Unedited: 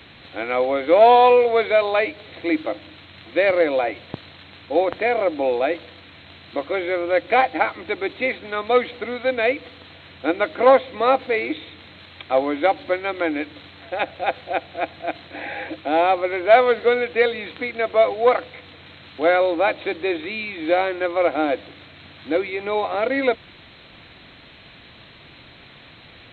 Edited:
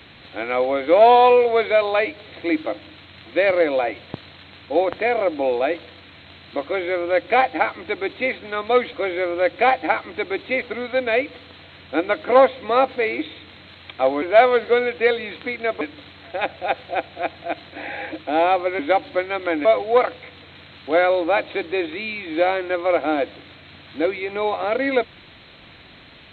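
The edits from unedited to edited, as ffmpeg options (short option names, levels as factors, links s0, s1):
-filter_complex "[0:a]asplit=7[s0][s1][s2][s3][s4][s5][s6];[s0]atrim=end=8.932[s7];[s1]atrim=start=6.638:end=8.332[s8];[s2]atrim=start=8.928:end=12.532[s9];[s3]atrim=start=16.368:end=17.962[s10];[s4]atrim=start=13.388:end=16.372[s11];[s5]atrim=start=12.528:end=13.392[s12];[s6]atrim=start=17.958[s13];[s7][s8]acrossfade=d=0.004:c1=hsin:c2=hsin[s14];[s14][s9]acrossfade=d=0.004:c1=hsin:c2=hsin[s15];[s15][s10]acrossfade=d=0.004:c1=hsin:c2=hsin[s16];[s16][s11]acrossfade=d=0.004:c1=hsin:c2=hsin[s17];[s17][s12]acrossfade=d=0.004:c1=hsin:c2=hsin[s18];[s18][s13]acrossfade=d=0.004:c1=hsin:c2=hsin"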